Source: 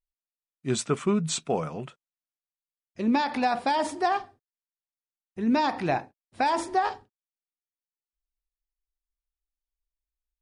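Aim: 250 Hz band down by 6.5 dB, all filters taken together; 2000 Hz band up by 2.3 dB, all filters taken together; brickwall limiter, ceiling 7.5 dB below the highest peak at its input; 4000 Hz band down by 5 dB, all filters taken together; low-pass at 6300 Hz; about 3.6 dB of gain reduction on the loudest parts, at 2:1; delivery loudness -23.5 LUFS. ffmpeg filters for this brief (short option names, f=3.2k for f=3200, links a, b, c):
-af "lowpass=6.3k,equalizer=f=250:t=o:g=-8,equalizer=f=2k:t=o:g=4.5,equalizer=f=4k:t=o:g=-6.5,acompressor=threshold=-27dB:ratio=2,volume=9.5dB,alimiter=limit=-12dB:level=0:latency=1"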